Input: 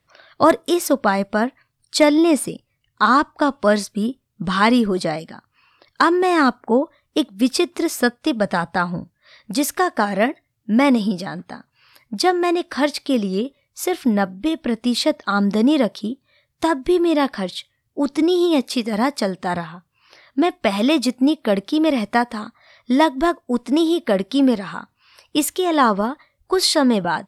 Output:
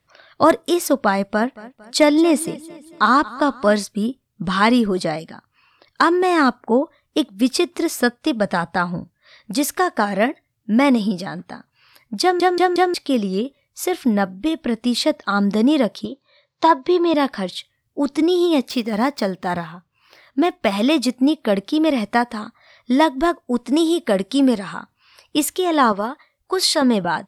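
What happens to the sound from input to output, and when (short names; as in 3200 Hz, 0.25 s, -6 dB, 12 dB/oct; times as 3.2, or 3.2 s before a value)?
1.15–3.73 feedback echo 0.227 s, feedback 48%, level -19 dB
12.22 stutter in place 0.18 s, 4 plays
16.05–17.14 speaker cabinet 150–6200 Hz, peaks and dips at 230 Hz -10 dB, 530 Hz +8 dB, 1000 Hz +9 dB, 4100 Hz +6 dB
18.7–20.72 median filter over 5 samples
23.7–24.74 bell 8300 Hz +8 dB 0.74 oct
25.92–26.82 low shelf 230 Hz -11 dB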